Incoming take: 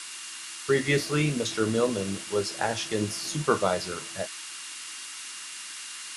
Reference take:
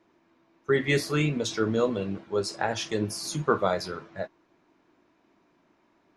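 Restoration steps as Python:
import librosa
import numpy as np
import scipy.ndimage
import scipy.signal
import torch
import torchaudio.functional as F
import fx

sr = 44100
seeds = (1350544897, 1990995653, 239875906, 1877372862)

y = fx.notch(x, sr, hz=2800.0, q=30.0)
y = fx.noise_reduce(y, sr, print_start_s=0.02, print_end_s=0.52, reduce_db=26.0)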